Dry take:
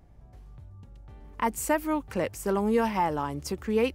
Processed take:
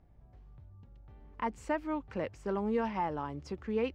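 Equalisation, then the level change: distance through air 160 m; -6.5 dB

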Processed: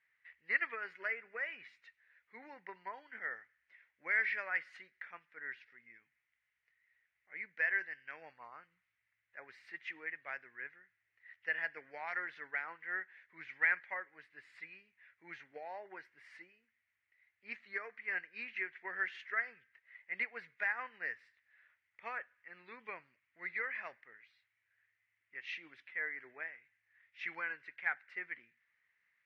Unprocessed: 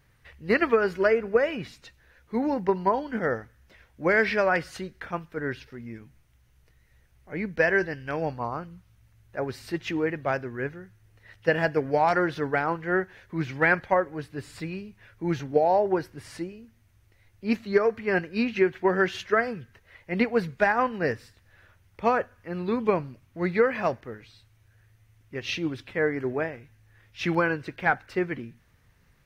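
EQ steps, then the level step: band-pass filter 2 kHz, Q 4.7; -3.0 dB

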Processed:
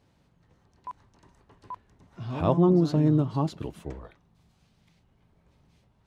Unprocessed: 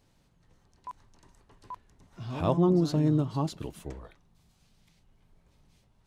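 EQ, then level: high-pass 51 Hz; treble shelf 4.6 kHz -10.5 dB; +3.0 dB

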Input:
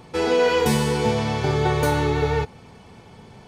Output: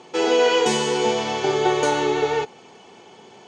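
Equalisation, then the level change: cabinet simulation 290–8100 Hz, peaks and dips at 370 Hz +7 dB, 780 Hz +4 dB, 3 kHz +7 dB, 6.6 kHz +9 dB; 0.0 dB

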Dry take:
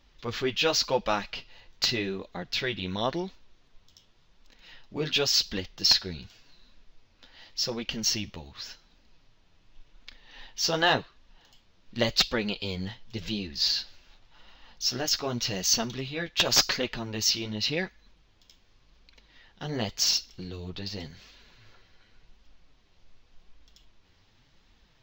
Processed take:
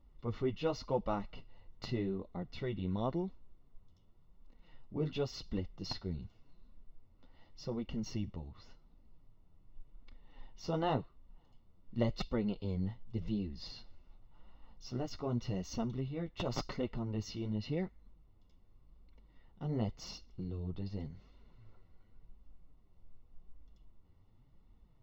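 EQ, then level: Savitzky-Golay filter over 65 samples; peaking EQ 760 Hz -9.5 dB 2.8 oct; +1.0 dB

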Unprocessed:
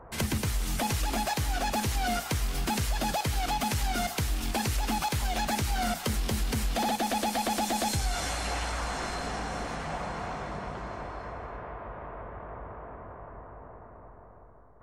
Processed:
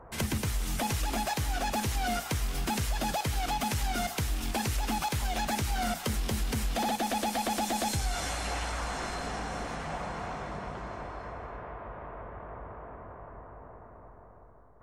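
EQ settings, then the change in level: peaking EQ 4.4 kHz -2 dB 0.2 oct; -1.5 dB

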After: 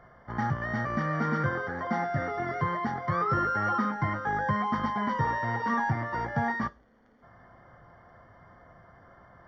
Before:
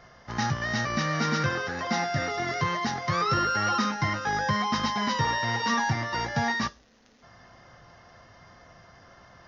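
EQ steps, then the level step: Savitzky-Golay filter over 41 samples; -1.0 dB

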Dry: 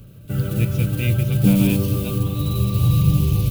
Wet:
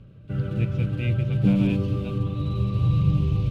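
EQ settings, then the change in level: low-pass 2.8 kHz 12 dB/octave; -4.5 dB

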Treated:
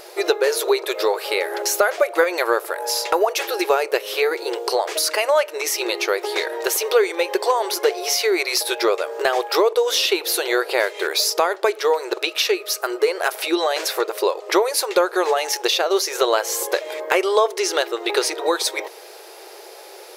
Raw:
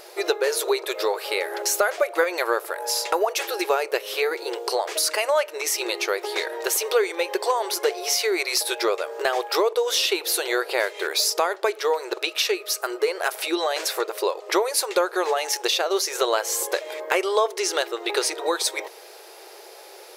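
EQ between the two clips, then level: dynamic bell 8.3 kHz, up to -4 dB, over -40 dBFS, Q 1.8; bass shelf 400 Hz +3 dB; +3.0 dB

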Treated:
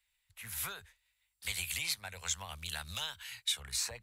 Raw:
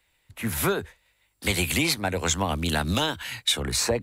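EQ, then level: amplifier tone stack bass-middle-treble 10-0-10; -8.0 dB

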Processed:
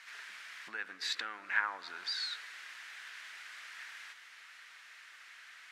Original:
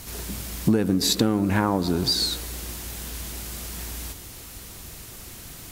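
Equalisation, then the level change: ladder band-pass 2 kHz, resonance 40%; peaking EQ 1.8 kHz +5 dB 1.2 oct; +3.0 dB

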